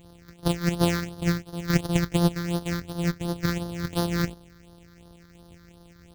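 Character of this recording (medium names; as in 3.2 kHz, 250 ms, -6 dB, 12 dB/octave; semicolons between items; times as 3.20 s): a buzz of ramps at a fixed pitch in blocks of 256 samples; phasing stages 6, 2.8 Hz, lowest notch 720–2300 Hz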